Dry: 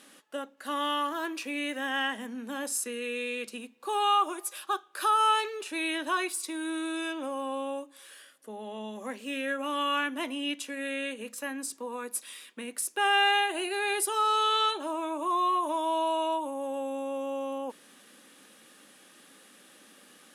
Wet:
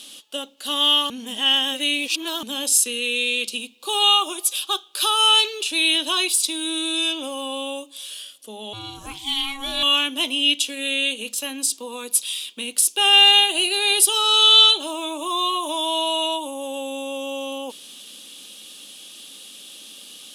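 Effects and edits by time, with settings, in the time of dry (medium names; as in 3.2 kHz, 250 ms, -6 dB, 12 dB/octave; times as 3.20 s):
1.10–2.43 s: reverse
8.73–9.83 s: ring modulator 550 Hz
whole clip: resonant high shelf 2.4 kHz +10 dB, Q 3; trim +4 dB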